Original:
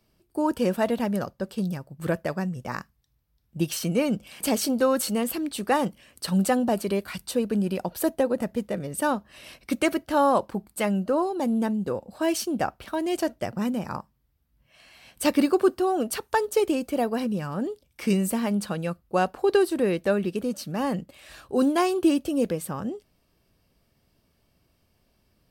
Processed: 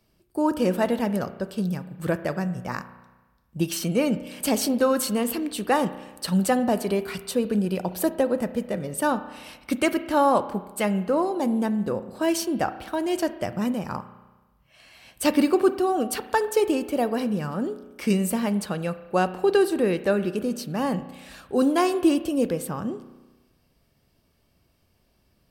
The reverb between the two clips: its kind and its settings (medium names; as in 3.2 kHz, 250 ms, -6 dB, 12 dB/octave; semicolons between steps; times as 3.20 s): spring tank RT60 1.2 s, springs 33 ms, chirp 55 ms, DRR 12 dB; trim +1 dB